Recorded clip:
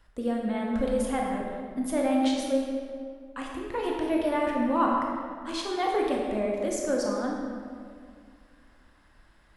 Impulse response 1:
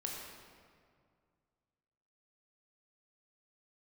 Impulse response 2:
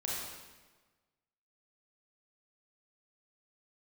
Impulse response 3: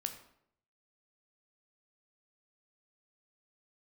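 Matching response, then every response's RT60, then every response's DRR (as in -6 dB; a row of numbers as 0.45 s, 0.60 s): 1; 2.1 s, 1.3 s, 0.70 s; -1.5 dB, -5.0 dB, 6.0 dB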